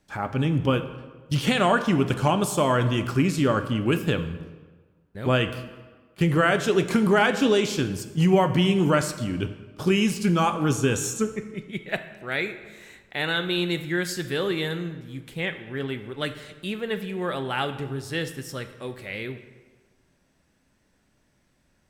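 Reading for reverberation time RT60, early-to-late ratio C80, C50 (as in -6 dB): 1.4 s, 13.0 dB, 11.5 dB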